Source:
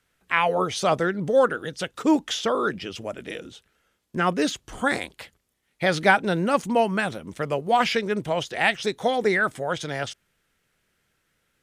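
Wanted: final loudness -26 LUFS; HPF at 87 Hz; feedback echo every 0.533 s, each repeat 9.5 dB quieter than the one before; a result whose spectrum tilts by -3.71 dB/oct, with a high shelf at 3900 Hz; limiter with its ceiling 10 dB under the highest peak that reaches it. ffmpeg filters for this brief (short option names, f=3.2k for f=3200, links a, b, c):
-af "highpass=87,highshelf=f=3.9k:g=6,alimiter=limit=-13.5dB:level=0:latency=1,aecho=1:1:533|1066|1599|2132:0.335|0.111|0.0365|0.012,volume=-0.5dB"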